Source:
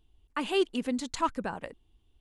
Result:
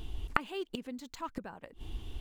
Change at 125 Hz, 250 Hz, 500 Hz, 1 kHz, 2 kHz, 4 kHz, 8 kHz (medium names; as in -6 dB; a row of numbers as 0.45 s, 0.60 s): +4.5 dB, -9.5 dB, -11.0 dB, -5.5 dB, -1.0 dB, -8.5 dB, -11.5 dB